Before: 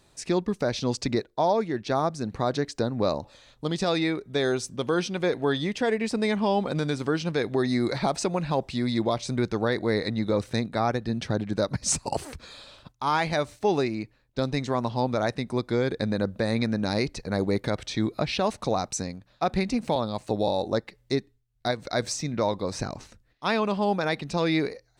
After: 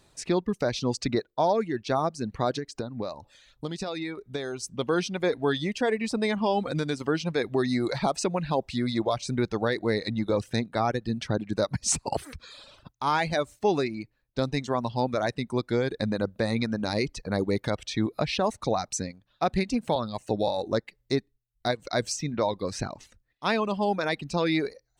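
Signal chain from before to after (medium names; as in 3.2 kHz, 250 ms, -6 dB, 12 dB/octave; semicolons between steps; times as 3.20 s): reverb removal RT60 0.7 s; 2.55–4.63 s: compression 10:1, threshold -29 dBFS, peak gain reduction 9.5 dB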